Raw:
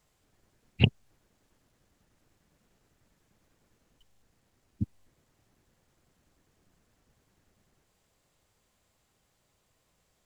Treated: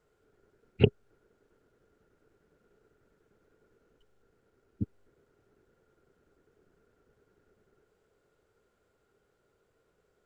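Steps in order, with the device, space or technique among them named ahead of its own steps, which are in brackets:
inside a helmet (high-shelf EQ 3,100 Hz −9.5 dB; hollow resonant body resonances 420/1,400 Hz, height 16 dB, ringing for 30 ms)
level −3 dB

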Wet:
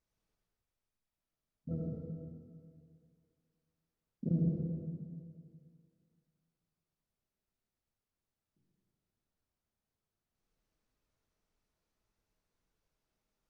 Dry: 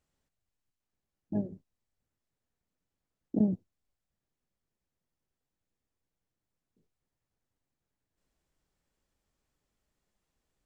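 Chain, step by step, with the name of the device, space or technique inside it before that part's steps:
slowed and reverbed (speed change −21%; convolution reverb RT60 2.3 s, pre-delay 64 ms, DRR −2.5 dB)
level −7 dB

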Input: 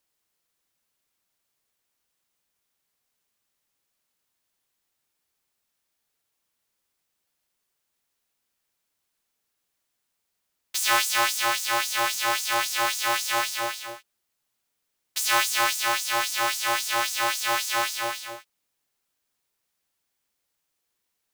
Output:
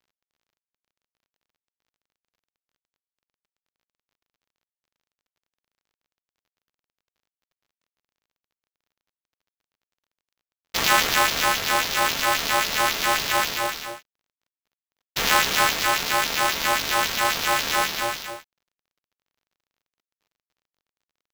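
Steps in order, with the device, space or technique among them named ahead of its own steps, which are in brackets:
early companding sampler (sample-rate reduction 9,400 Hz, jitter 0%; log-companded quantiser 6 bits)
level +3 dB

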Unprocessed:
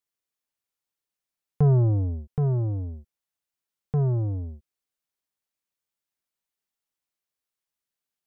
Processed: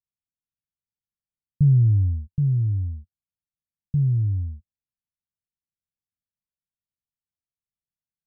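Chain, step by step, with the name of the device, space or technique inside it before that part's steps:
the neighbour's flat through the wall (low-pass filter 210 Hz 24 dB per octave; parametric band 91 Hz +4 dB)
level +1.5 dB

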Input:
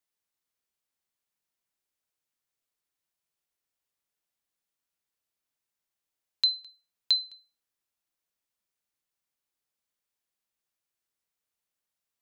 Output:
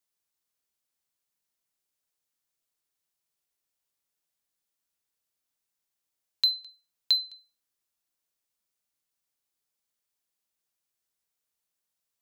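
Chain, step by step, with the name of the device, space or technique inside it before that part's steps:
exciter from parts (in parallel at −6 dB: high-pass filter 3,100 Hz 12 dB per octave + soft clipping −29 dBFS, distortion −7 dB)

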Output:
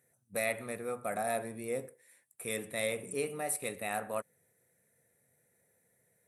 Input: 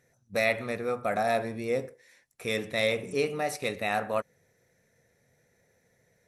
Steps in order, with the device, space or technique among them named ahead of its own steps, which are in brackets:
budget condenser microphone (high-pass filter 93 Hz; high shelf with overshoot 7,200 Hz +9.5 dB, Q 3)
level −7 dB

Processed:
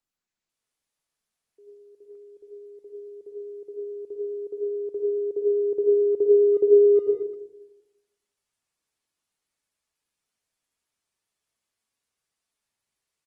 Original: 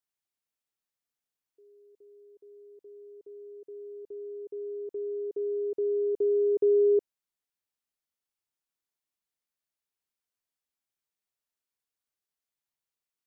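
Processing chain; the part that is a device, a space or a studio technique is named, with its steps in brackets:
0:04.49–0:05.65: dynamic equaliser 220 Hz, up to −5 dB, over −58 dBFS, Q 3.2
speakerphone in a meeting room (convolution reverb RT60 0.95 s, pre-delay 77 ms, DRR −1 dB; far-end echo of a speakerphone 240 ms, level −29 dB; automatic gain control gain up to 10 dB; level −4.5 dB; Opus 20 kbit/s 48,000 Hz)

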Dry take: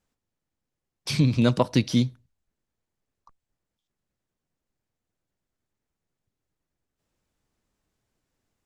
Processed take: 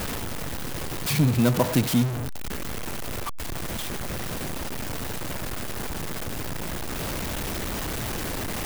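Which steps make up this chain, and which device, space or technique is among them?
early CD player with a faulty converter (converter with a step at zero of −20.5 dBFS; converter with an unsteady clock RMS 0.044 ms)
level −2.5 dB

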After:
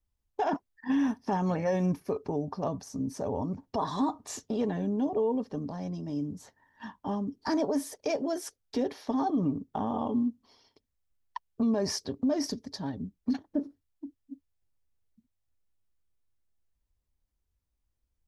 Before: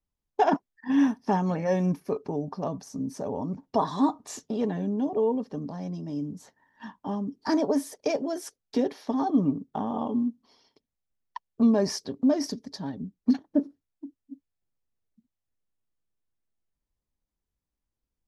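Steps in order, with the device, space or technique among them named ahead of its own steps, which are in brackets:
car stereo with a boomy subwoofer (low shelf with overshoot 120 Hz +6.5 dB, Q 1.5; brickwall limiter −20.5 dBFS, peak gain reduction 8.5 dB)

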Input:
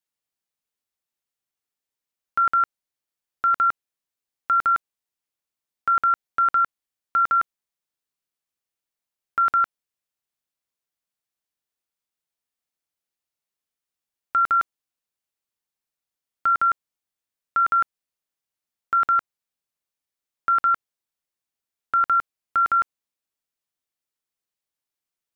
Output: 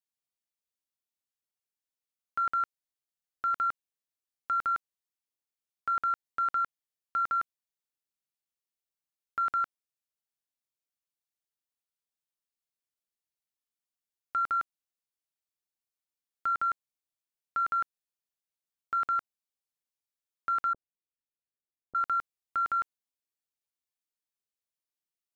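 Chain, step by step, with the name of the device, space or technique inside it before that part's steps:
exciter from parts (in parallel at −8.5 dB: high-pass filter 2,400 Hz 12 dB per octave + soft clipping −37.5 dBFS, distortion −10 dB)
0:20.73–0:21.95: on the sum: inverse Chebyshev low-pass filter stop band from 1,800 Hz, stop band 60 dB
level −9 dB

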